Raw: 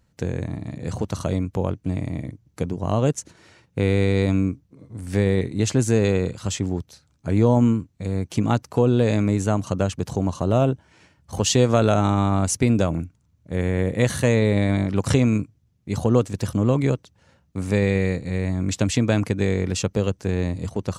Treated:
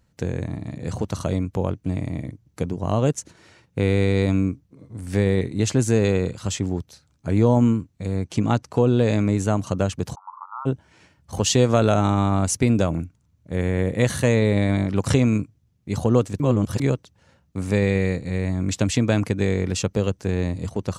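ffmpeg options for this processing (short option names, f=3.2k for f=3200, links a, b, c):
-filter_complex "[0:a]asettb=1/sr,asplit=3[a][b][c];[a]atrim=end=8.164[d];[b]atrim=start=8.16:end=9.36,asetpts=PTS-STARTPTS,afade=t=in:d=0.004:c=qsin,afade=t=out:st=1.196:d=0.004:c=qsin,lowpass=9.5k[e];[c]atrim=start=9.356[f];[d][e]acrossfade=d=0.004:c1=hsin:c2=qsin[g];[g][f]acrossfade=d=0.004:c1=qsin:c2=hsin,asplit=3[h][i][j];[h]afade=t=out:st=10.14:d=0.02[k];[i]asuperpass=centerf=1100:order=12:qfactor=2,afade=t=in:st=10.14:d=0.02,afade=t=out:st=10.65:d=0.02[l];[j]afade=t=in:st=10.65:d=0.02[m];[k][l][m]amix=inputs=3:normalize=0,asplit=3[n][o][p];[n]atrim=end=16.402[q];[o]atrim=start=16.398:end=16.802,asetpts=PTS-STARTPTS,areverse[r];[p]atrim=start=16.798[s];[q][r]acrossfade=d=0.004:c1=hsin:c2=hsin[t];[t][s]acrossfade=d=0.004:c1=hsin:c2=hsin"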